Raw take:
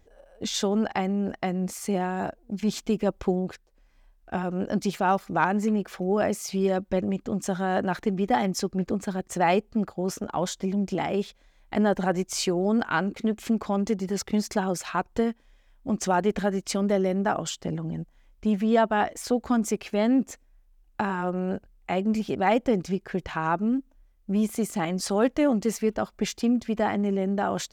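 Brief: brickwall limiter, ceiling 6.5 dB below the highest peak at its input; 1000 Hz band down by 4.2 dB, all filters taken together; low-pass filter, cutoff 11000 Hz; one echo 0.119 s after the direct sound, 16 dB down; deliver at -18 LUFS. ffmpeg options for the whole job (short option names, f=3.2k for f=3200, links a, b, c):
-af "lowpass=11k,equalizer=f=1k:t=o:g=-6,alimiter=limit=-18dB:level=0:latency=1,aecho=1:1:119:0.158,volume=11dB"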